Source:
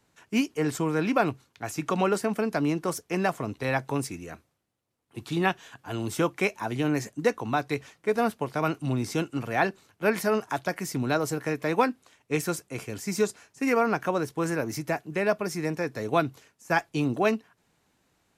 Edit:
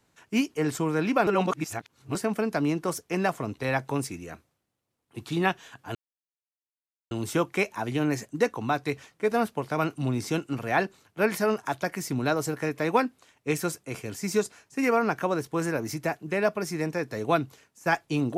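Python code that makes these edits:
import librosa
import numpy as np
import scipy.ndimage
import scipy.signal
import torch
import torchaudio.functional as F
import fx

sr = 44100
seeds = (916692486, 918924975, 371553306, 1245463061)

y = fx.edit(x, sr, fx.reverse_span(start_s=1.27, length_s=0.88),
    fx.insert_silence(at_s=5.95, length_s=1.16), tone=tone)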